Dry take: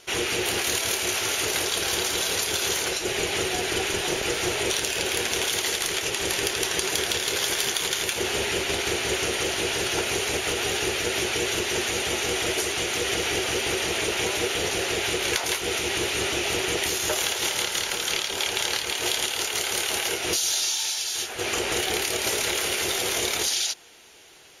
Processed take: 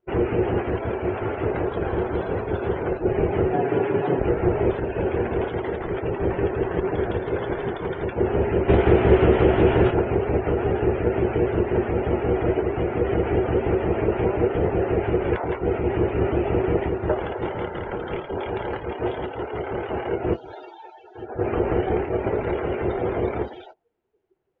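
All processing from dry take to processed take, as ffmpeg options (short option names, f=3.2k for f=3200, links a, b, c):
-filter_complex "[0:a]asettb=1/sr,asplit=3[a][b][c];[a]atrim=end=3.534[d];[b]atrim=start=3.53:end=4.19,asetpts=PTS-STARTPTS,afade=t=in:d=0.004:c=qsin,afade=t=out:st=0.656:d=0.004:c=qsin,highpass=140,aecho=1:1:7.1:0.57,atrim=end_sample=29106[e];[c]atrim=start=4.186[f];[d][e]acrossfade=d=0.004:c1=hsin:c2=qsin[g];[g][f]acrossfade=d=0.004:c1=qsin:c2=hsin,asettb=1/sr,asplit=3[h][i][j];[h]atrim=end=8.684[k];[i]atrim=start=8.68:end=9.91,asetpts=PTS-STARTPTS,afade=t=in:d=0.004:c=qsin,afade=t=out:st=1.226:d=0.004:c=qsin,highshelf=f=8.8k:g=7.5,acontrast=24,asplit=2[l][m];[m]adelay=16,volume=-12dB[n];[l][n]amix=inputs=2:normalize=0,atrim=end_sample=54243[o];[j]atrim=start=9.906[p];[k][o]acrossfade=d=0.004:c1=hsin:c2=qsin[q];[q][p]acrossfade=d=0.004:c1=qsin:c2=hsin,lowpass=1.1k,afftdn=nr=29:nf=-41,lowshelf=f=330:g=10,volume=4dB"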